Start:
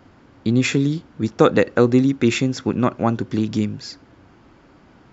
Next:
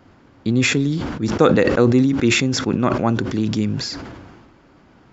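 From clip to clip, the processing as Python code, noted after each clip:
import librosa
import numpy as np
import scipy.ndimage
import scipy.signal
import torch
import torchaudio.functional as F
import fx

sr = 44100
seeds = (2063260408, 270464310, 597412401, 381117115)

y = fx.sustainer(x, sr, db_per_s=35.0)
y = F.gain(torch.from_numpy(y), -1.0).numpy()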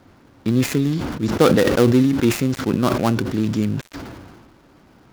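y = fx.dead_time(x, sr, dead_ms=0.16)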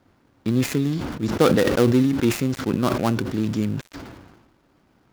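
y = fx.law_mismatch(x, sr, coded='A')
y = F.gain(torch.from_numpy(y), -2.5).numpy()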